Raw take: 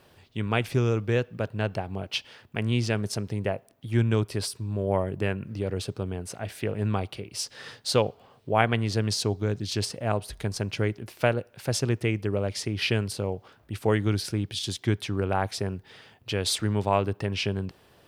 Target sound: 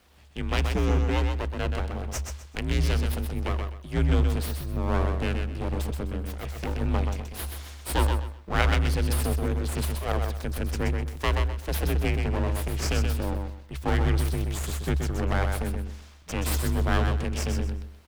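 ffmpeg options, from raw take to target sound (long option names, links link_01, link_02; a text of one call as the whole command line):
ffmpeg -i in.wav -af "aeval=exprs='abs(val(0))':channel_layout=same,afreqshift=-72,aecho=1:1:127|254|381:0.531|0.133|0.0332" out.wav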